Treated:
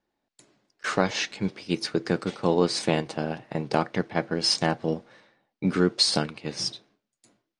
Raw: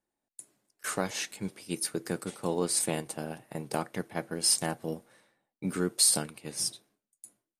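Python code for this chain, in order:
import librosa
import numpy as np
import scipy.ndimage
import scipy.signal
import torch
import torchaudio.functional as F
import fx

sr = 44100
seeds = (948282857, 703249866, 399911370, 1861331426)

y = scipy.signal.sosfilt(scipy.signal.butter(4, 5400.0, 'lowpass', fs=sr, output='sos'), x)
y = F.gain(torch.from_numpy(y), 8.0).numpy()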